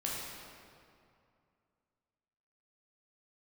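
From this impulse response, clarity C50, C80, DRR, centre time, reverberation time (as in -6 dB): -1.5 dB, 0.5 dB, -5.0 dB, 126 ms, 2.4 s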